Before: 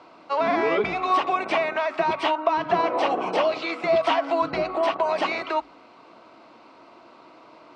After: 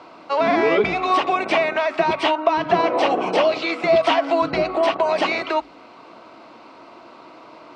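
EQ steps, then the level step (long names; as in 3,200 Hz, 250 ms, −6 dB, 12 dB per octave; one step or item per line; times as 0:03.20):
dynamic equaliser 1,100 Hz, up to −4 dB, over −37 dBFS, Q 1.2
+6.0 dB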